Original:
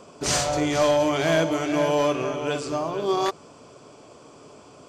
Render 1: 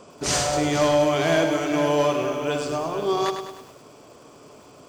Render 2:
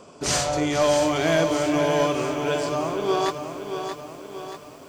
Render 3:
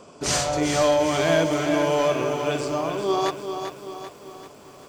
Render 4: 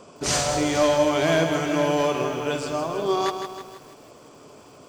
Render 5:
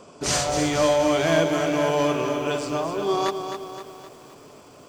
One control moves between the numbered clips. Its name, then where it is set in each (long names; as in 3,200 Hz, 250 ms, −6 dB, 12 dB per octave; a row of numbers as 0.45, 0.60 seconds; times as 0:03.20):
feedback echo at a low word length, delay time: 102, 630, 391, 160, 260 milliseconds